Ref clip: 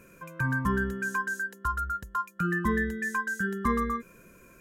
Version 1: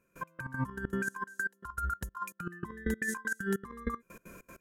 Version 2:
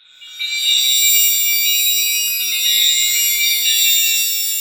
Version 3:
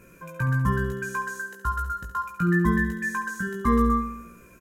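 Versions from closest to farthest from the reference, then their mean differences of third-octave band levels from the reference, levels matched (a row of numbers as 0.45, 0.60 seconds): 3, 1, 2; 4.5, 8.0, 21.5 decibels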